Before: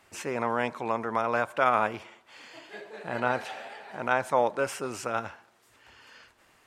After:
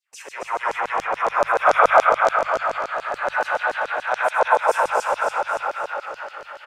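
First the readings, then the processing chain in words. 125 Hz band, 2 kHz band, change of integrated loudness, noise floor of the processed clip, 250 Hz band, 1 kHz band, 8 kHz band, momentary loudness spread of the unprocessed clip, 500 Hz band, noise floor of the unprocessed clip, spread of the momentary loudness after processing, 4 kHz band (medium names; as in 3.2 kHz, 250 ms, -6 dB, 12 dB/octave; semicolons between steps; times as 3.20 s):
no reading, +10.5 dB, +8.0 dB, -44 dBFS, -5.5 dB, +10.5 dB, +4.5 dB, 19 LU, +8.0 dB, -63 dBFS, 14 LU, +7.0 dB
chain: peaking EQ 160 Hz -13 dB 2.5 oct; level rider gain up to 3.5 dB; on a send: multi-tap echo 102/544 ms -5.5/-10 dB; on the sum: spring tank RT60 3.7 s, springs 57 ms, chirp 65 ms, DRR -8.5 dB; dynamic bell 3 kHz, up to -7 dB, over -43 dBFS, Q 1; in parallel at -3 dB: level held to a coarse grid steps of 16 dB; on the sum: LFO high-pass saw down 7 Hz 440–6400 Hz; hum notches 50/100/150 Hz; gate with hold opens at -39 dBFS; modulated delay 268 ms, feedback 32%, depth 88 cents, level -6 dB; trim -5 dB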